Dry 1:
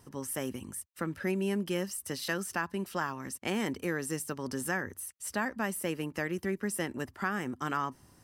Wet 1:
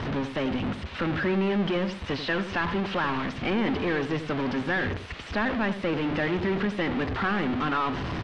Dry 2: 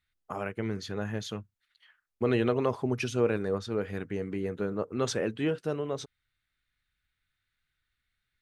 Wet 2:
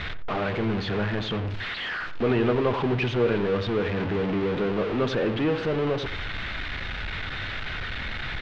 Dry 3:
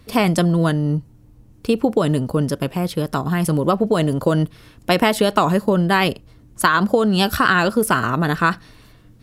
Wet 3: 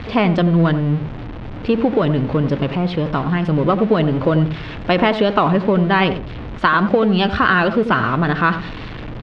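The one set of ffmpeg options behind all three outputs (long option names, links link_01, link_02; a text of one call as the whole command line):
ffmpeg -i in.wav -filter_complex "[0:a]aeval=exprs='val(0)+0.5*0.0631*sgn(val(0))':channel_layout=same,lowpass=frequency=3500:width=0.5412,lowpass=frequency=3500:width=1.3066,asplit=2[link_01][link_02];[link_02]adelay=89,lowpass=frequency=940:poles=1,volume=-9dB,asplit=2[link_03][link_04];[link_04]adelay=89,lowpass=frequency=940:poles=1,volume=0.23,asplit=2[link_05][link_06];[link_06]adelay=89,lowpass=frequency=940:poles=1,volume=0.23[link_07];[link_01][link_03][link_05][link_07]amix=inputs=4:normalize=0" out.wav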